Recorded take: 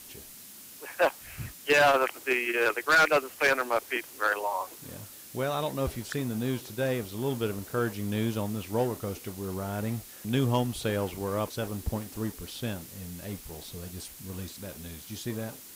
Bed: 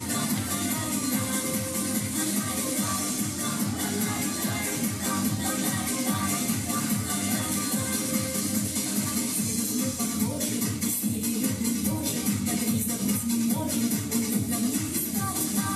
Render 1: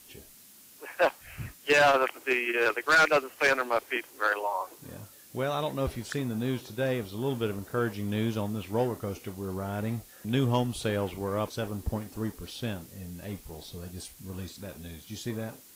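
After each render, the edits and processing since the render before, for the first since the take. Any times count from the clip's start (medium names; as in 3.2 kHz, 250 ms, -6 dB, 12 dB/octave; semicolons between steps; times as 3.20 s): noise print and reduce 6 dB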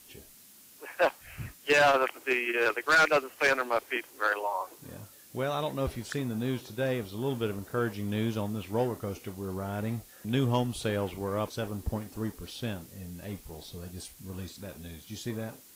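trim -1 dB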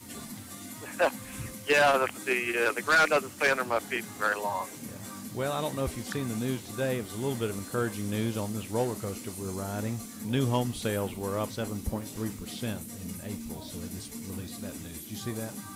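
add bed -15 dB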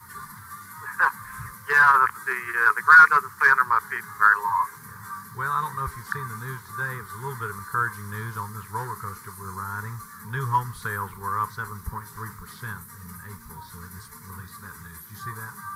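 FFT filter 170 Hz 0 dB, 280 Hz -23 dB, 420 Hz -4 dB, 640 Hz -28 dB, 990 Hz +14 dB, 1.7 kHz +11 dB, 2.7 kHz -16 dB, 4.4 kHz -4 dB, 7.5 kHz -8 dB, 12 kHz +2 dB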